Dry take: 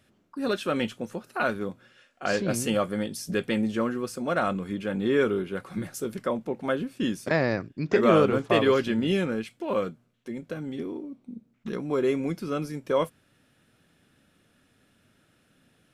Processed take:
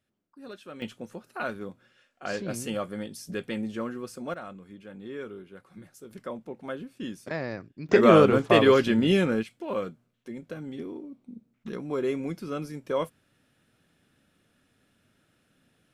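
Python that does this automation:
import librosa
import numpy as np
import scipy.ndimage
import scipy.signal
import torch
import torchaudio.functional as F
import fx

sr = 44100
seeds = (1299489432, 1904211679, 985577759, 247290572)

y = fx.gain(x, sr, db=fx.steps((0.0, -16.0), (0.82, -6.0), (4.34, -15.0), (6.11, -8.5), (7.89, 3.0), (9.43, -3.5)))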